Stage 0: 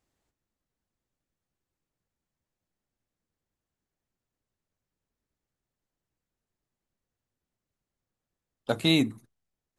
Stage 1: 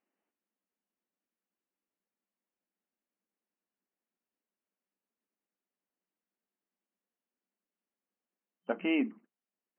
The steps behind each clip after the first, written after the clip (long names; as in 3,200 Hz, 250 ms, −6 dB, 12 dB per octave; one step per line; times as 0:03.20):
brick-wall band-pass 180–3,100 Hz
level −5 dB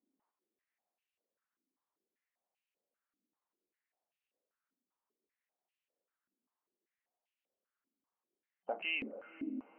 brickwall limiter −28.5 dBFS, peak gain reduction 10.5 dB
feedback delay with all-pass diffusion 499 ms, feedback 51%, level −11 dB
band-pass on a step sequencer 5.1 Hz 270–2,700 Hz
level +10.5 dB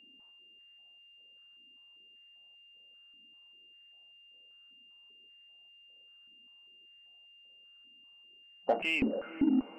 spectral tilt −3 dB per octave
in parallel at −4 dB: soft clipping −38 dBFS, distortion −8 dB
on the sum: steady tone 2,800 Hz −62 dBFS
level +6 dB